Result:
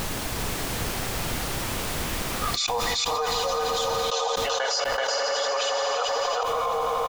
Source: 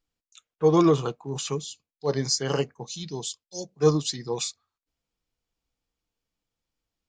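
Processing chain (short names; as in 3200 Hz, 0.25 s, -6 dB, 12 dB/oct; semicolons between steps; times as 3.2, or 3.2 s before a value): whole clip reversed; elliptic high-pass 570 Hz, stop band 40 dB; high shelf 2400 Hz -9.5 dB; notch 1000 Hz, Q 20; comb 4.1 ms, depth 47%; on a send: swelling echo 85 ms, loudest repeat 5, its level -12 dB; on the sum: step gate "...x.x.xxxx..." 62 bpm -24 dB; air absorption 100 m; added noise pink -78 dBFS; echo 0.381 s -7 dB; fast leveller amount 100%; gain +8.5 dB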